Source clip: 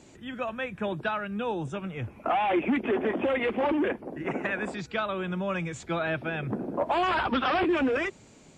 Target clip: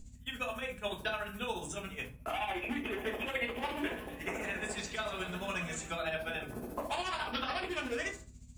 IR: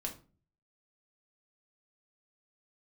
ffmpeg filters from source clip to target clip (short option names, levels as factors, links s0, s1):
-filter_complex "[0:a]aemphasis=mode=production:type=riaa,bandreject=f=107:t=h:w=4,bandreject=f=214:t=h:w=4,bandreject=f=321:t=h:w=4,bandreject=f=428:t=h:w=4,bandreject=f=535:t=h:w=4,bandreject=f=642:t=h:w=4,bandreject=f=749:t=h:w=4,bandreject=f=856:t=h:w=4,bandreject=f=963:t=h:w=4,bandreject=f=1070:t=h:w=4,bandreject=f=1177:t=h:w=4,bandreject=f=1284:t=h:w=4,bandreject=f=1391:t=h:w=4,bandreject=f=1498:t=h:w=4,bandreject=f=1605:t=h:w=4,bandreject=f=1712:t=h:w=4,agate=range=0.112:threshold=0.00891:ratio=16:detection=peak,highshelf=f=3000:g=9.5,acrossover=split=840|2000[s0][s1][s2];[s0]acompressor=threshold=0.02:ratio=4[s3];[s1]acompressor=threshold=0.0126:ratio=4[s4];[s2]acompressor=threshold=0.0141:ratio=4[s5];[s3][s4][s5]amix=inputs=3:normalize=0,aeval=exprs='val(0)+0.00562*(sin(2*PI*50*n/s)+sin(2*PI*2*50*n/s)/2+sin(2*PI*3*50*n/s)/3+sin(2*PI*4*50*n/s)/4+sin(2*PI*5*50*n/s)/5)':c=same,tremolo=f=14:d=0.77,asettb=1/sr,asplit=3[s6][s7][s8];[s6]atrim=end=3.524[s9];[s7]atrim=start=3.52:end=5.91,asetpts=PTS-STARTPTS,afade=t=in:d=0.004:c=qsin,afade=t=out:st=2.386:d=0.004:c=qsin,asplit=9[s10][s11][s12][s13][s14][s15][s16][s17][s18];[s11]adelay=121,afreqshift=64,volume=0.266[s19];[s12]adelay=242,afreqshift=128,volume=0.168[s20];[s13]adelay=363,afreqshift=192,volume=0.106[s21];[s14]adelay=484,afreqshift=256,volume=0.0668[s22];[s15]adelay=605,afreqshift=320,volume=0.0417[s23];[s16]adelay=726,afreqshift=384,volume=0.0263[s24];[s17]adelay=847,afreqshift=448,volume=0.0166[s25];[s18]adelay=968,afreqshift=512,volume=0.0105[s26];[s10][s19][s20][s21][s22][s23][s24][s25][s26]amix=inputs=9:normalize=0,atrim=end_sample=105399[s27];[s8]atrim=start=5.906[s28];[s9][s27]acrossfade=d=0.004:c1=hsin:c2=qsin[s29];[s29][s28]acrossfade=d=0.004:c1=qsin:c2=hsin[s30];[1:a]atrim=start_sample=2205,asetrate=43218,aresample=44100[s31];[s30][s31]afir=irnorm=-1:irlink=0,volume=0.891"